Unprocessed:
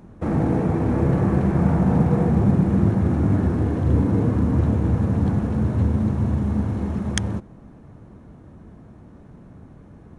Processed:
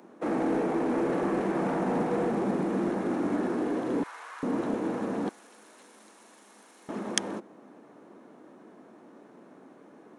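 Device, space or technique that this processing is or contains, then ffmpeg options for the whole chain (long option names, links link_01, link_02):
one-band saturation: -filter_complex "[0:a]highpass=frequency=280:width=0.5412,highpass=frequency=280:width=1.3066,asettb=1/sr,asplit=3[link_01][link_02][link_03];[link_01]atrim=end=4.034[link_04];[link_02]atrim=start=4.03:end=4.43,asetpts=PTS-STARTPTS,afade=type=in:duration=0.004:curve=qsin,afade=type=out:start_time=0.396:duration=0.004:curve=qsin,highpass=frequency=1100:width=0.5412,highpass=frequency=1100:width=1.3066[link_05];[link_03]atrim=start=4.426[link_06];[link_04][link_05]acrossfade=duration=0.004:curve1=hsin:curve2=qsin[link_07];[link_07][link_06]acrossfade=duration=0.004:curve1=qsin:curve2=hsin,acrossover=split=250|2300[link_08][link_09][link_10];[link_09]asoftclip=type=tanh:threshold=-24dB[link_11];[link_08][link_11][link_10]amix=inputs=3:normalize=0,asettb=1/sr,asplit=3[link_12][link_13][link_14];[link_12]atrim=end=5.294[link_15];[link_13]atrim=start=5.29:end=6.89,asetpts=PTS-STARTPTS,afade=type=in:duration=0.004:curve=qsin,afade=type=out:start_time=1.596:duration=0.004:curve=qsin,aderivative[link_16];[link_14]atrim=start=6.886[link_17];[link_15][link_16]acrossfade=duration=0.004:curve1=hsin:curve2=qsin[link_18];[link_18][link_17]acrossfade=duration=0.004:curve1=qsin:curve2=hsin"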